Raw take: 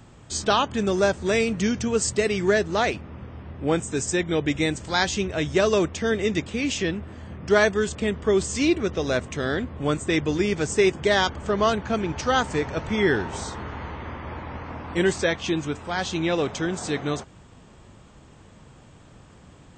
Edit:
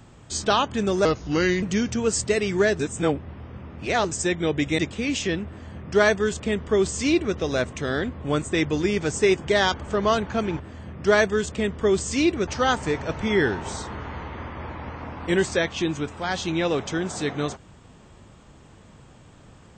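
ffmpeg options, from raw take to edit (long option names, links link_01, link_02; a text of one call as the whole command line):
ffmpeg -i in.wav -filter_complex "[0:a]asplit=8[link_01][link_02][link_03][link_04][link_05][link_06][link_07][link_08];[link_01]atrim=end=1.054[link_09];[link_02]atrim=start=1.05:end=1.51,asetpts=PTS-STARTPTS,asetrate=35280,aresample=44100[link_10];[link_03]atrim=start=1.506:end=2.682[link_11];[link_04]atrim=start=2.678:end=4.002,asetpts=PTS-STARTPTS,areverse[link_12];[link_05]atrim=start=3.998:end=4.672[link_13];[link_06]atrim=start=6.338:end=12.152[link_14];[link_07]atrim=start=7.028:end=8.912[link_15];[link_08]atrim=start=12.148[link_16];[link_09][link_10]acrossfade=duration=0.004:curve1=hsin:curve2=hsin[link_17];[link_17][link_11]acrossfade=duration=0.004:curve1=hsin:curve2=hsin[link_18];[link_18][link_12]acrossfade=duration=0.004:curve1=hsin:curve2=hsin[link_19];[link_19][link_13]acrossfade=duration=0.004:curve1=hsin:curve2=hsin[link_20];[link_20][link_14]acrossfade=duration=0.004:curve1=hsin:curve2=hsin[link_21];[link_21][link_15]acrossfade=duration=0.004:curve1=hsin:curve2=hsin[link_22];[link_22][link_16]acrossfade=duration=0.004:curve1=hsin:curve2=hsin" out.wav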